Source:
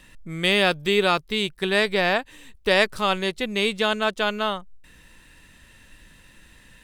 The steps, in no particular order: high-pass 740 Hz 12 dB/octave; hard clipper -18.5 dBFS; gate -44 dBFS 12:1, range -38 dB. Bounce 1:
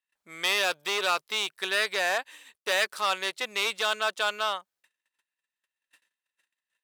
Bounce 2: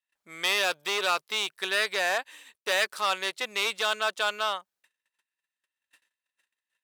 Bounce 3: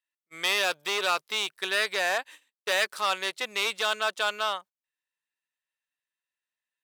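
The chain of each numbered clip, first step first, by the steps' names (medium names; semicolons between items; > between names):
hard clipper > gate > high-pass; gate > hard clipper > high-pass; hard clipper > high-pass > gate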